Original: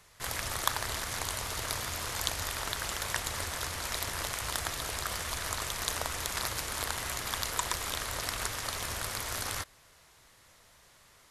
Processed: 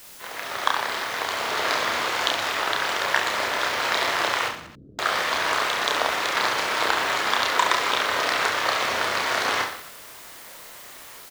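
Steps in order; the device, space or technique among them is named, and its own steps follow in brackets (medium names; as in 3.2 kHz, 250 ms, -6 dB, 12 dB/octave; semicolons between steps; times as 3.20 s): dictaphone (band-pass 330–3400 Hz; level rider gain up to 13.5 dB; wow and flutter; white noise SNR 19 dB); 4.48–4.99 s: inverse Chebyshev low-pass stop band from 830 Hz, stop band 60 dB; reverse bouncing-ball echo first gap 30 ms, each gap 1.3×, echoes 5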